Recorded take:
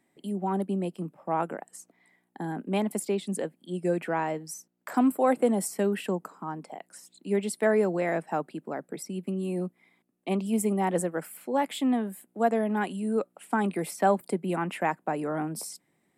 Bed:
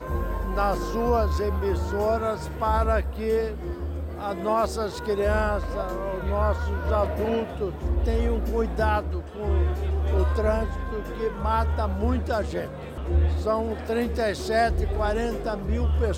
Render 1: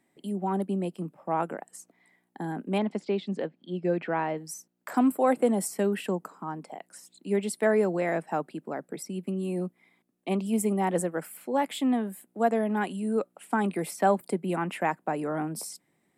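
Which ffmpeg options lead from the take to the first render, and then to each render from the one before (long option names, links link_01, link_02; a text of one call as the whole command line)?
ffmpeg -i in.wav -filter_complex "[0:a]asettb=1/sr,asplit=3[link_01][link_02][link_03];[link_01]atrim=end=2.784[link_04];[link_02]atrim=start=2.78:end=4.38,asetpts=PTS-STARTPTS,afade=type=in:duration=0.004:curve=qsin,afade=type=out:start_time=1.596:duration=0.004:curve=qsin,lowpass=frequency=4700:width=0.5412,lowpass=frequency=4700:width=1.3066[link_05];[link_03]atrim=start=4.376[link_06];[link_04][link_05]acrossfade=duration=0.004:curve1=hsin:curve2=qsin[link_07];[link_07][link_06]acrossfade=duration=0.004:curve1=qsin:curve2=hsin" out.wav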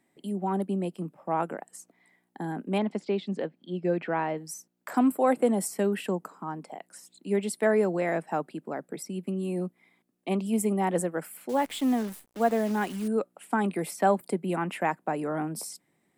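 ffmpeg -i in.wav -filter_complex "[0:a]asettb=1/sr,asplit=3[link_01][link_02][link_03];[link_01]atrim=end=11.494[link_04];[link_02]atrim=start=11.49:end=13.08,asetpts=PTS-STARTPTS,afade=type=in:duration=0.004:curve=qsin,afade=type=out:start_time=1.586:duration=0.004:curve=qsin,acrusher=bits=8:dc=4:mix=0:aa=0.000001[link_05];[link_03]atrim=start=13.076[link_06];[link_04][link_05]acrossfade=duration=0.004:curve1=hsin:curve2=qsin[link_07];[link_07][link_06]acrossfade=duration=0.004:curve1=qsin:curve2=hsin" out.wav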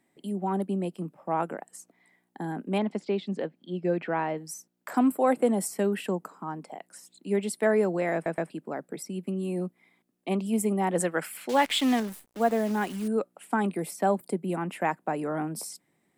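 ffmpeg -i in.wav -filter_complex "[0:a]asettb=1/sr,asplit=3[link_01][link_02][link_03];[link_01]atrim=end=11.004[link_04];[link_02]atrim=start=11:end=12,asetpts=PTS-STARTPTS,afade=type=in:duration=0.004:curve=qsin,afade=type=out:start_time=0.996:duration=0.004:curve=qsin,equalizer=frequency=3000:width=0.41:gain=11.5[link_05];[link_03]atrim=start=11.996[link_06];[link_04][link_05]acrossfade=duration=0.004:curve1=hsin:curve2=qsin[link_07];[link_07][link_06]acrossfade=duration=0.004:curve1=qsin:curve2=hsin,asettb=1/sr,asplit=3[link_08][link_09][link_10];[link_08]atrim=end=13.714[link_11];[link_09]atrim=start=13.71:end=14.8,asetpts=PTS-STARTPTS,afade=type=in:duration=0.004:curve=qsin,afade=type=out:start_time=1.086:duration=0.004:curve=qsin,equalizer=frequency=1900:width_type=o:width=2.8:gain=-4.5[link_12];[link_10]atrim=start=14.796[link_13];[link_11][link_12]acrossfade=duration=0.004:curve1=hsin:curve2=qsin[link_14];[link_14][link_13]acrossfade=duration=0.004:curve1=qsin:curve2=hsin,asplit=4[link_15][link_16][link_17][link_18];[link_15]atrim=end=8.262[link_19];[link_16]atrim=start=8.138:end=8.262[link_20];[link_17]atrim=start=8.138:end=8.262[link_21];[link_18]atrim=start=8.498[link_22];[link_19][link_20]acrossfade=duration=0.004:curve1=hsin:curve2=hsin[link_23];[link_23][link_21]acrossfade=duration=0.004:curve1=hsin:curve2=hsin[link_24];[link_24][link_22]acrossfade=duration=0.004:curve1=hsin:curve2=hsin" out.wav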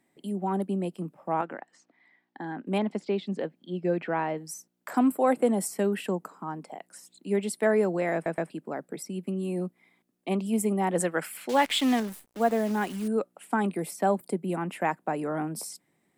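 ffmpeg -i in.wav -filter_complex "[0:a]asettb=1/sr,asplit=3[link_01][link_02][link_03];[link_01]atrim=end=1.414[link_04];[link_02]atrim=start=1.41:end=2.67,asetpts=PTS-STARTPTS,afade=type=in:duration=0.004:curve=qsin,afade=type=out:start_time=1.256:duration=0.004:curve=qsin,highpass=160,equalizer=frequency=190:width_type=q:width=4:gain=-8,equalizer=frequency=430:width_type=q:width=4:gain=-7,equalizer=frequency=640:width_type=q:width=4:gain=-3,equalizer=frequency=1800:width_type=q:width=4:gain=4,lowpass=frequency=4800:width=0.5412,lowpass=frequency=4800:width=1.3066[link_05];[link_03]atrim=start=2.666[link_06];[link_04][link_05]acrossfade=duration=0.004:curve1=hsin:curve2=qsin[link_07];[link_07][link_06]acrossfade=duration=0.004:curve1=qsin:curve2=hsin" out.wav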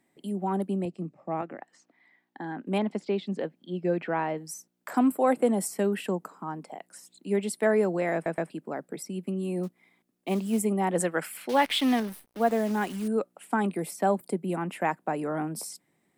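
ffmpeg -i in.wav -filter_complex "[0:a]asettb=1/sr,asplit=3[link_01][link_02][link_03];[link_01]atrim=end=0.854[link_04];[link_02]atrim=start=0.85:end=1.61,asetpts=PTS-STARTPTS,afade=type=in:duration=0.004:curve=qsin,afade=type=out:start_time=0.756:duration=0.004:curve=qsin,highpass=120,equalizer=frequency=120:width_type=q:width=4:gain=8,equalizer=frequency=490:width_type=q:width=4:gain=-3,equalizer=frequency=940:width_type=q:width=4:gain=-9,equalizer=frequency=1500:width_type=q:width=4:gain=-9,equalizer=frequency=3200:width_type=q:width=4:gain=-9,equalizer=frequency=5200:width_type=q:width=4:gain=-4,lowpass=frequency=6900:width=0.5412,lowpass=frequency=6900:width=1.3066[link_05];[link_03]atrim=start=1.606[link_06];[link_04][link_05]acrossfade=duration=0.004:curve1=hsin:curve2=qsin[link_07];[link_07][link_06]acrossfade=duration=0.004:curve1=qsin:curve2=hsin,asettb=1/sr,asplit=3[link_08][link_09][link_10];[link_08]atrim=end=9.634[link_11];[link_09]atrim=start=9.63:end=10.59,asetpts=PTS-STARTPTS,afade=type=in:duration=0.004:curve=qsin,afade=type=out:start_time=0.956:duration=0.004:curve=qsin,acrusher=bits=6:mode=log:mix=0:aa=0.000001[link_12];[link_10]atrim=start=10.586[link_13];[link_11][link_12]acrossfade=duration=0.004:curve1=hsin:curve2=qsin[link_14];[link_14][link_13]acrossfade=duration=0.004:curve1=qsin:curve2=hsin,asettb=1/sr,asplit=3[link_15][link_16][link_17];[link_15]atrim=end=11.424[link_18];[link_16]atrim=start=11.42:end=12.47,asetpts=PTS-STARTPTS,afade=type=in:duration=0.004:curve=qsin,afade=type=out:start_time=1.046:duration=0.004:curve=qsin,equalizer=frequency=7300:width_type=o:width=0.3:gain=-9[link_19];[link_17]atrim=start=12.466[link_20];[link_18][link_19]acrossfade=duration=0.004:curve1=hsin:curve2=qsin[link_21];[link_21][link_20]acrossfade=duration=0.004:curve1=qsin:curve2=hsin" out.wav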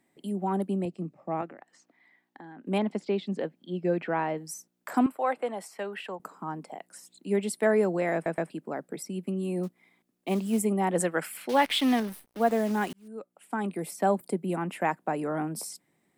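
ffmpeg -i in.wav -filter_complex "[0:a]asettb=1/sr,asplit=3[link_01][link_02][link_03];[link_01]atrim=end=1.494[link_04];[link_02]atrim=start=1.49:end=2.66,asetpts=PTS-STARTPTS,afade=type=in:duration=0.004:curve=qsin,afade=type=out:start_time=1.166:duration=0.004:curve=qsin,acompressor=threshold=-43dB:ratio=6:attack=3.2:release=140:knee=1:detection=peak[link_05];[link_03]atrim=start=2.656[link_06];[link_04][link_05]acrossfade=duration=0.004:curve1=hsin:curve2=qsin[link_07];[link_07][link_06]acrossfade=duration=0.004:curve1=qsin:curve2=hsin,asettb=1/sr,asplit=3[link_08][link_09][link_10];[link_08]atrim=end=5.064[link_11];[link_09]atrim=start=5.06:end=6.2,asetpts=PTS-STARTPTS,afade=type=in:duration=0.004:curve=qsin,afade=type=out:start_time=1.136:duration=0.004:curve=qsin,acrossover=split=560 4500:gain=0.141 1 0.158[link_12][link_13][link_14];[link_12][link_13][link_14]amix=inputs=3:normalize=0[link_15];[link_10]atrim=start=6.196[link_16];[link_11][link_15]acrossfade=duration=0.004:curve1=hsin:curve2=qsin[link_17];[link_17][link_16]acrossfade=duration=0.004:curve1=qsin:curve2=hsin,asplit=2[link_18][link_19];[link_18]atrim=end=12.93,asetpts=PTS-STARTPTS,afade=type=out:start_time=12.926:duration=0.004:curve=hsin[link_20];[link_19]atrim=start=12.93,asetpts=PTS-STARTPTS,afade=type=in:duration=1.12[link_21];[link_20][link_21]concat=n=2:v=0:a=1" out.wav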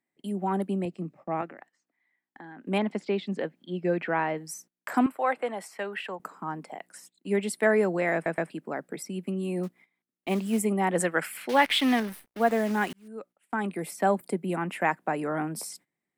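ffmpeg -i in.wav -af "equalizer=frequency=1900:width_type=o:width=1.3:gain=5.5,agate=range=-17dB:threshold=-51dB:ratio=16:detection=peak" out.wav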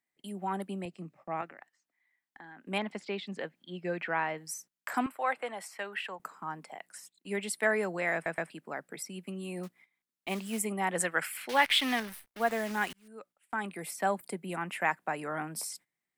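ffmpeg -i in.wav -af "equalizer=frequency=280:width_type=o:width=2.8:gain=-10" out.wav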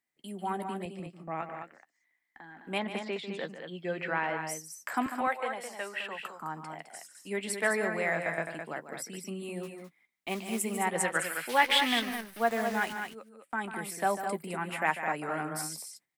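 ffmpeg -i in.wav -filter_complex "[0:a]asplit=2[link_01][link_02];[link_02]adelay=13,volume=-12dB[link_03];[link_01][link_03]amix=inputs=2:normalize=0,aecho=1:1:145.8|209.9:0.282|0.447" out.wav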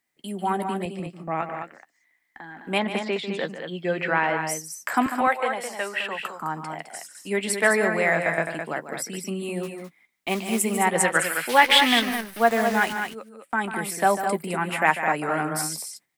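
ffmpeg -i in.wav -af "volume=8.5dB,alimiter=limit=-3dB:level=0:latency=1" out.wav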